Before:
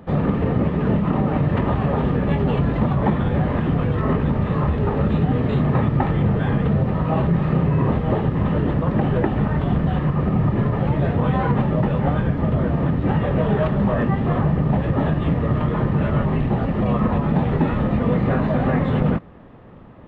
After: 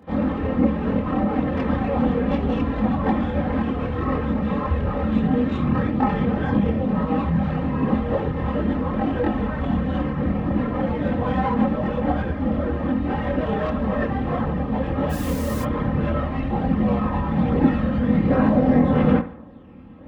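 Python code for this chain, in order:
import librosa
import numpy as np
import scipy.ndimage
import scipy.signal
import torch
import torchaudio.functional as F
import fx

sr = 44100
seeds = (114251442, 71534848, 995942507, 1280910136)

p1 = fx.tracing_dist(x, sr, depth_ms=0.051)
p2 = scipy.signal.sosfilt(scipy.signal.butter(2, 61.0, 'highpass', fs=sr, output='sos'), p1)
p3 = p2 + 0.61 * np.pad(p2, (int(3.8 * sr / 1000.0), 0))[:len(p2)]
p4 = fx.quant_dither(p3, sr, seeds[0], bits=6, dither='triangular', at=(15.09, 15.61), fade=0.02)
p5 = fx.chorus_voices(p4, sr, voices=4, hz=0.59, base_ms=25, depth_ms=2.5, mix_pct=60)
y = p5 + fx.echo_bbd(p5, sr, ms=69, stages=1024, feedback_pct=31, wet_db=-13.5, dry=0)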